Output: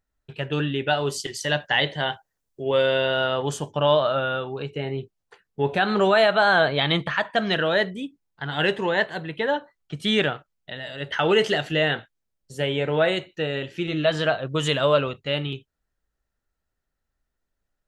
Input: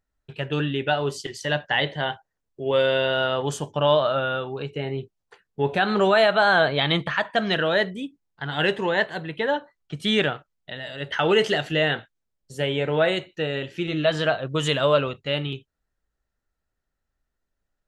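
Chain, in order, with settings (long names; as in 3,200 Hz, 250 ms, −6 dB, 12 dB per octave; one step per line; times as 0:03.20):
0:00.90–0:02.62: high-shelf EQ 4,600 Hz +8.5 dB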